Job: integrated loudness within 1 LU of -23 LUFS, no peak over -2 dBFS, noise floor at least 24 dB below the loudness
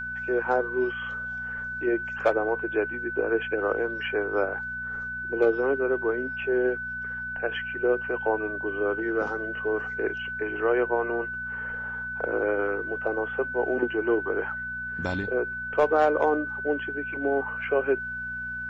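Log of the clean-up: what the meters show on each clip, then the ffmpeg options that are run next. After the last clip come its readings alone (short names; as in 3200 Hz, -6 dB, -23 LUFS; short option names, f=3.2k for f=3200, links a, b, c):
hum 60 Hz; harmonics up to 240 Hz; hum level -44 dBFS; steady tone 1500 Hz; tone level -31 dBFS; loudness -27.5 LUFS; peak -11.5 dBFS; loudness target -23.0 LUFS
-> -af "bandreject=f=60:t=h:w=4,bandreject=f=120:t=h:w=4,bandreject=f=180:t=h:w=4,bandreject=f=240:t=h:w=4"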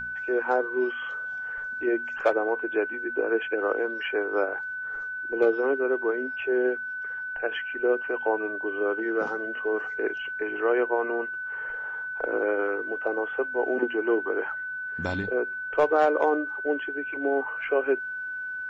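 hum none; steady tone 1500 Hz; tone level -31 dBFS
-> -af "bandreject=f=1.5k:w=30"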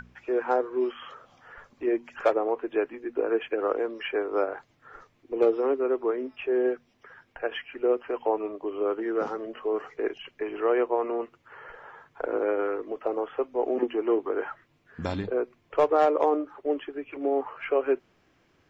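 steady tone none; loudness -28.0 LUFS; peak -12.0 dBFS; loudness target -23.0 LUFS
-> -af "volume=5dB"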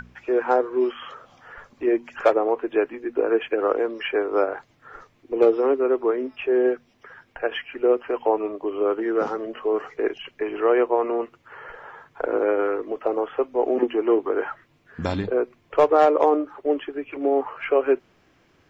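loudness -23.0 LUFS; peak -7.0 dBFS; noise floor -61 dBFS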